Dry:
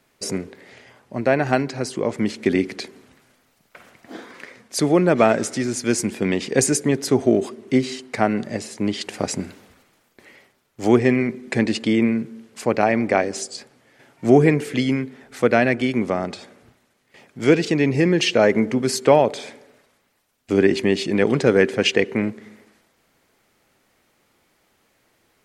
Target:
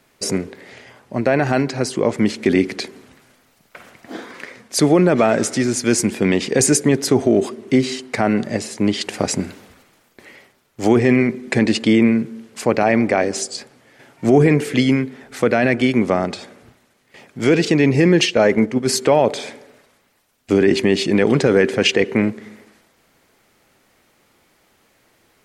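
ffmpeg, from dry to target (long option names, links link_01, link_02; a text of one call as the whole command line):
ffmpeg -i in.wav -filter_complex "[0:a]asplit=3[link_01][link_02][link_03];[link_01]afade=type=out:start_time=18.25:duration=0.02[link_04];[link_02]agate=range=-7dB:threshold=-18dB:ratio=16:detection=peak,afade=type=in:start_time=18.25:duration=0.02,afade=type=out:start_time=18.87:duration=0.02[link_05];[link_03]afade=type=in:start_time=18.87:duration=0.02[link_06];[link_04][link_05][link_06]amix=inputs=3:normalize=0,alimiter=limit=-9.5dB:level=0:latency=1:release=16,volume=5dB" out.wav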